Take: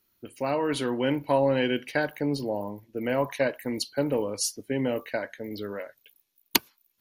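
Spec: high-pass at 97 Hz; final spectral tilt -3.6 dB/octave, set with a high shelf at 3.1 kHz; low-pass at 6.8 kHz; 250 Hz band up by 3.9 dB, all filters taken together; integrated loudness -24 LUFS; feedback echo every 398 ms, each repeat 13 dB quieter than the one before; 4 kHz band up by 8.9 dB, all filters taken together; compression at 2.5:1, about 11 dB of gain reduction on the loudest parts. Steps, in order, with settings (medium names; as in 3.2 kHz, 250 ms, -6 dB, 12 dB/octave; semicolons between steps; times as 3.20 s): high-pass 97 Hz; low-pass 6.8 kHz; peaking EQ 250 Hz +4.5 dB; treble shelf 3.1 kHz +7.5 dB; peaking EQ 4 kHz +6 dB; compression 2.5:1, threshold -28 dBFS; feedback delay 398 ms, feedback 22%, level -13 dB; trim +6.5 dB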